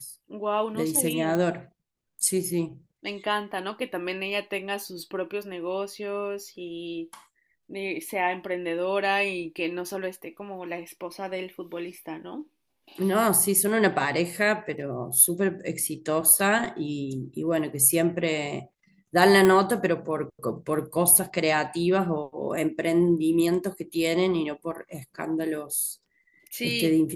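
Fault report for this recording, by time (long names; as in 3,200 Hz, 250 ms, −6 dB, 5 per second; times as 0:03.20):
0:01.35: click −15 dBFS
0:19.45: click −9 dBFS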